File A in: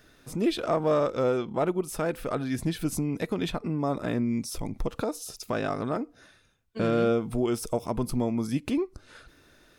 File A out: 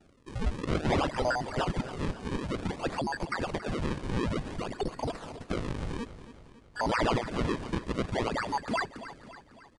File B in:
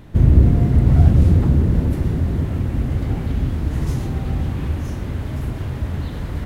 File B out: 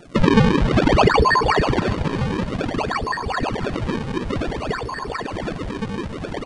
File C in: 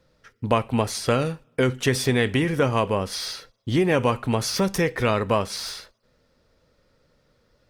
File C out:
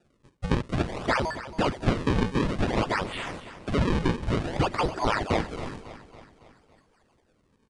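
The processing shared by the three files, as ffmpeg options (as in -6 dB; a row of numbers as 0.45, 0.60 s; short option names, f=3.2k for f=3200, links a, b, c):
-filter_complex "[0:a]afftfilt=real='real(if(lt(b,272),68*(eq(floor(b/68),0)*1+eq(floor(b/68),1)*2+eq(floor(b/68),2)*3+eq(floor(b/68),3)*0)+mod(b,68),b),0)':imag='imag(if(lt(b,272),68*(eq(floor(b/68),0)*1+eq(floor(b/68),1)*2+eq(floor(b/68),2)*3+eq(floor(b/68),3)*0)+mod(b,68),b),0)':win_size=2048:overlap=0.75,lowshelf=f=230:g=-7.5,acrusher=samples=37:mix=1:aa=0.000001:lfo=1:lforange=59.2:lforate=0.55,acrossover=split=4800[a][b];[b]acompressor=threshold=-44dB:ratio=4:attack=1:release=60[c];[a][c]amix=inputs=2:normalize=0,asplit=2[d][e];[e]aecho=0:1:277|554|831|1108|1385:0.2|0.106|0.056|0.0297|0.0157[f];[d][f]amix=inputs=2:normalize=0,aresample=22050,aresample=44100,volume=-3.5dB"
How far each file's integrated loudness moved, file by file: -3.5, -2.0, -4.5 LU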